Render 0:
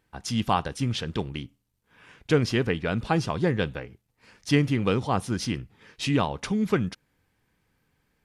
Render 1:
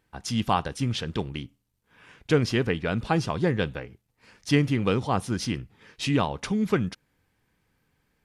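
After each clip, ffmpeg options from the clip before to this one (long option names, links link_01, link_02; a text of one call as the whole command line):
ffmpeg -i in.wav -af anull out.wav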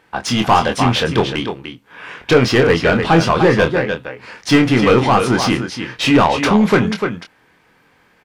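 ffmpeg -i in.wav -filter_complex "[0:a]aecho=1:1:298:0.282,asplit=2[link_01][link_02];[link_02]highpass=frequency=720:poles=1,volume=23dB,asoftclip=type=tanh:threshold=-8dB[link_03];[link_01][link_03]amix=inputs=2:normalize=0,lowpass=frequency=1800:poles=1,volume=-6dB,asplit=2[link_04][link_05];[link_05]adelay=24,volume=-6dB[link_06];[link_04][link_06]amix=inputs=2:normalize=0,volume=5.5dB" out.wav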